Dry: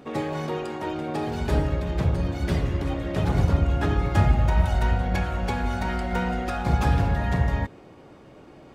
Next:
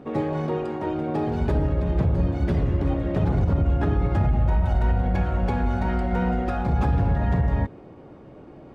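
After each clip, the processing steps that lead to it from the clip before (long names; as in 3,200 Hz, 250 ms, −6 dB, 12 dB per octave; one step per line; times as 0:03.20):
tilt shelving filter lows +4.5 dB, about 1,100 Hz
brickwall limiter −13.5 dBFS, peak gain reduction 9.5 dB
high-shelf EQ 5,000 Hz −10.5 dB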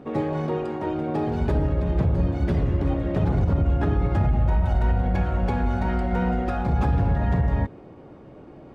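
no processing that can be heard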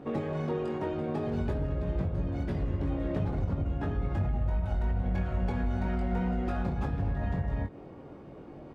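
downward compressor, threshold −25 dBFS, peak gain reduction 8.5 dB
double-tracking delay 21 ms −5.5 dB
level −3 dB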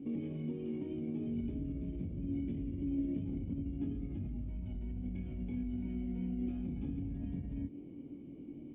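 brickwall limiter −27.5 dBFS, peak gain reduction 8 dB
formant resonators in series i
level +5.5 dB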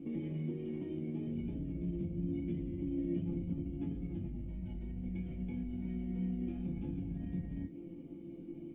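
tuned comb filter 170 Hz, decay 0.18 s, harmonics all, mix 90%
level +11 dB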